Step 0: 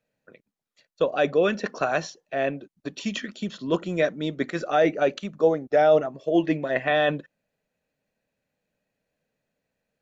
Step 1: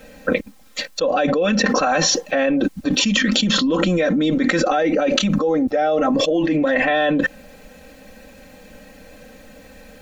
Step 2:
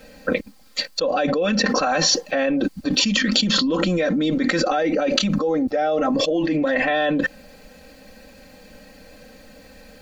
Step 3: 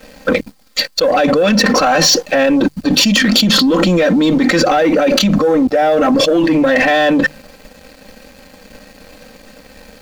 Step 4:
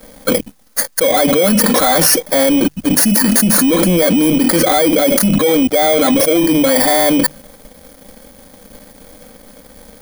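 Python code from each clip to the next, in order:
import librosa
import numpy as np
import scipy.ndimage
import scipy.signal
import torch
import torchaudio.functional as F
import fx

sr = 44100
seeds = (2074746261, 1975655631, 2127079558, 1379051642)

y1 = fx.low_shelf(x, sr, hz=90.0, db=9.5)
y1 = y1 + 0.97 * np.pad(y1, (int(3.8 * sr / 1000.0), 0))[:len(y1)]
y1 = fx.env_flatten(y1, sr, amount_pct=100)
y1 = F.gain(torch.from_numpy(y1), -7.5).numpy()
y2 = fx.peak_eq(y1, sr, hz=4600.0, db=9.5, octaves=0.21)
y2 = F.gain(torch.from_numpy(y2), -2.5).numpy()
y3 = fx.hum_notches(y2, sr, base_hz=50, count=3)
y3 = np.clip(y3, -10.0 ** (-6.5 / 20.0), 10.0 ** (-6.5 / 20.0))
y3 = fx.leveller(y3, sr, passes=2)
y3 = F.gain(torch.from_numpy(y3), 2.5).numpy()
y4 = fx.bit_reversed(y3, sr, seeds[0], block=16)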